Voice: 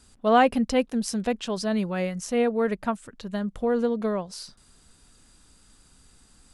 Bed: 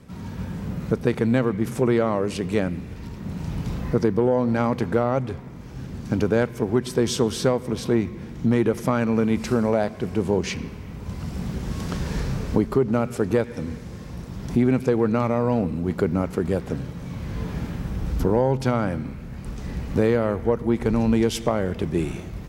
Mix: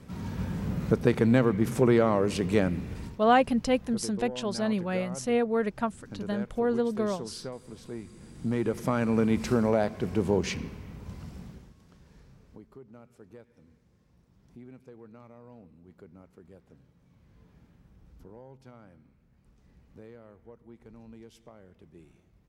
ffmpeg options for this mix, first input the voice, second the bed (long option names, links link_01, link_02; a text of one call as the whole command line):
ffmpeg -i stem1.wav -i stem2.wav -filter_complex "[0:a]adelay=2950,volume=-2.5dB[link_01];[1:a]volume=13.5dB,afade=type=out:start_time=2.99:duration=0.22:silence=0.141254,afade=type=in:start_time=8.03:duration=1.18:silence=0.177828,afade=type=out:start_time=10.44:duration=1.3:silence=0.0530884[link_02];[link_01][link_02]amix=inputs=2:normalize=0" out.wav